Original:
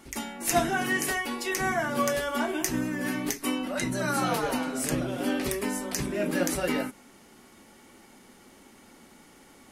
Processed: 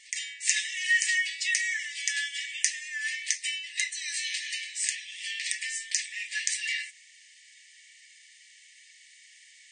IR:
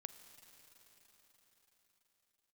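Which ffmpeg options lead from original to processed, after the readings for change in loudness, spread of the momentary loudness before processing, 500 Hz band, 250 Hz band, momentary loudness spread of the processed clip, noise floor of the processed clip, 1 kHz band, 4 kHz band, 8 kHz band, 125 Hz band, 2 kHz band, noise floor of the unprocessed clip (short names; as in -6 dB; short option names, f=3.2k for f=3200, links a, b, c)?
-0.5 dB, 4 LU, under -40 dB, under -40 dB, 7 LU, -56 dBFS, under -40 dB, +5.5 dB, +4.0 dB, under -40 dB, +3.5 dB, -55 dBFS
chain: -af "afftfilt=real='re*between(b*sr/4096,1700,9100)':imag='im*between(b*sr/4096,1700,9100)':win_size=4096:overlap=0.75,volume=5.5dB"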